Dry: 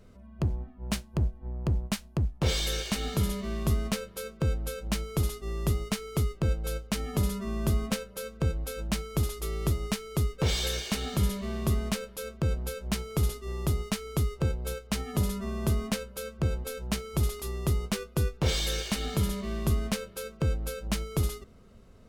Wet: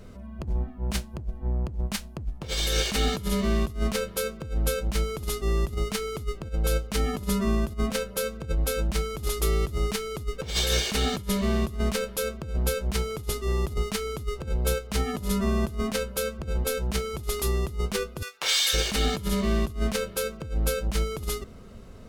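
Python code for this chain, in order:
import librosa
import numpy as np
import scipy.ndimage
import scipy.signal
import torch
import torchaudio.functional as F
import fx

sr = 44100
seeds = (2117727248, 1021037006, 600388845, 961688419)

y = fx.highpass(x, sr, hz=1300.0, slope=12, at=(18.21, 18.73), fade=0.02)
y = fx.over_compress(y, sr, threshold_db=-31.0, ratio=-0.5)
y = y * librosa.db_to_amplitude(6.0)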